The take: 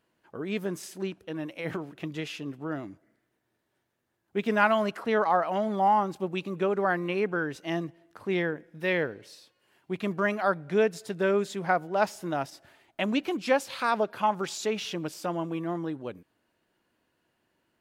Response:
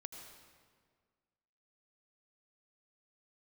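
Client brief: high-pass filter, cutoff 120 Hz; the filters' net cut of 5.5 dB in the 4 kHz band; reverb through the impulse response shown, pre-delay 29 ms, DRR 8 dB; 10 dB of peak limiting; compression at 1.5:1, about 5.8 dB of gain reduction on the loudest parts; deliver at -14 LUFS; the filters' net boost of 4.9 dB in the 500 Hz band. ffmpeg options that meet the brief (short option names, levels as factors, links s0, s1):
-filter_complex "[0:a]highpass=120,equalizer=f=500:t=o:g=6.5,equalizer=f=4000:t=o:g=-8,acompressor=threshold=0.0316:ratio=1.5,alimiter=limit=0.0708:level=0:latency=1,asplit=2[s0][s1];[1:a]atrim=start_sample=2205,adelay=29[s2];[s1][s2]afir=irnorm=-1:irlink=0,volume=0.631[s3];[s0][s3]amix=inputs=2:normalize=0,volume=8.91"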